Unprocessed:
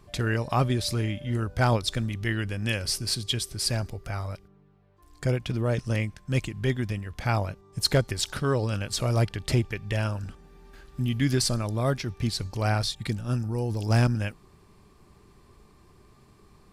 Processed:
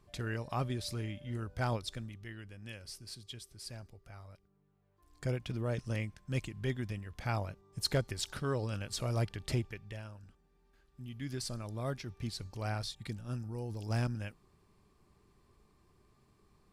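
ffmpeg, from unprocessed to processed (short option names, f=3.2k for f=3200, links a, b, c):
-af "volume=7dB,afade=t=out:st=1.72:d=0.57:silence=0.398107,afade=t=in:st=4.33:d=0.91:silence=0.316228,afade=t=out:st=9.53:d=0.5:silence=0.298538,afade=t=in:st=11.01:d=0.83:silence=0.398107"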